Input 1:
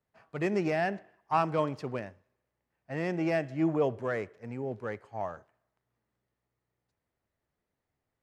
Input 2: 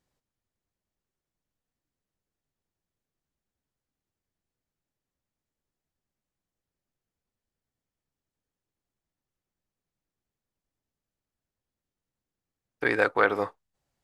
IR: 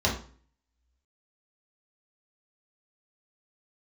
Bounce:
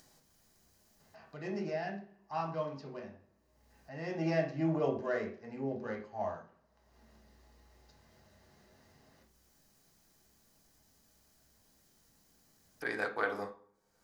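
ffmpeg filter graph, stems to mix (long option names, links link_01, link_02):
-filter_complex "[0:a]lowpass=frequency=5500:width=0.5412,lowpass=frequency=5500:width=1.3066,aemphasis=mode=production:type=75kf,adelay=1000,volume=-13.5dB,afade=type=in:start_time=3.97:duration=0.21:silence=0.446684,asplit=2[link_01][link_02];[link_02]volume=-4dB[link_03];[1:a]highshelf=frequency=3400:gain=9,volume=-15dB,asplit=2[link_04][link_05];[link_05]volume=-13.5dB[link_06];[2:a]atrim=start_sample=2205[link_07];[link_03][link_06]amix=inputs=2:normalize=0[link_08];[link_08][link_07]afir=irnorm=-1:irlink=0[link_09];[link_01][link_04][link_09]amix=inputs=3:normalize=0,equalizer=frequency=78:width=2:gain=-14,acompressor=mode=upward:threshold=-44dB:ratio=2.5"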